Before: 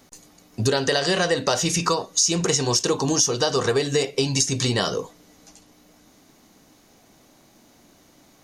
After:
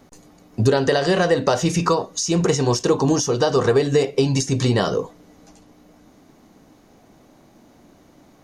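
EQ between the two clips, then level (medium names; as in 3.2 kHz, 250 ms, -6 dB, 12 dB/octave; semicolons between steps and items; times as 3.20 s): treble shelf 2 kHz -12 dB; +5.5 dB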